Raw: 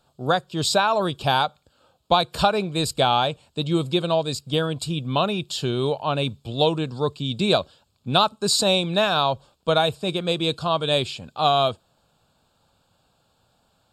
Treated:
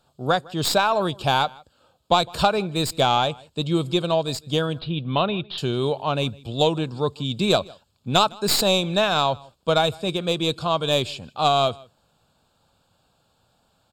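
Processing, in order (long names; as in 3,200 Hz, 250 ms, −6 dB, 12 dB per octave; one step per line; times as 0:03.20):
stylus tracing distortion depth 0.045 ms
0:04.79–0:05.58: Butterworth low-pass 4,000 Hz 48 dB per octave
slap from a distant wall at 27 metres, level −24 dB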